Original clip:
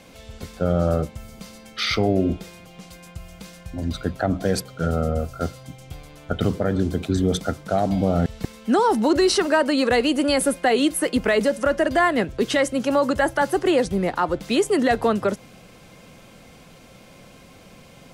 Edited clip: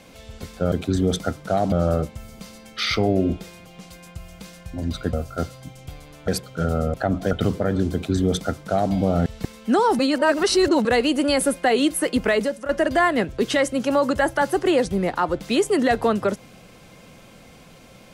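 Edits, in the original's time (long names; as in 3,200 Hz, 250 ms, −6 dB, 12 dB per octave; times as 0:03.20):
0:04.13–0:04.50: swap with 0:05.16–0:06.31
0:06.93–0:07.93: duplicate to 0:00.72
0:08.99–0:09.85: reverse
0:11.31–0:11.69: fade out, to −13.5 dB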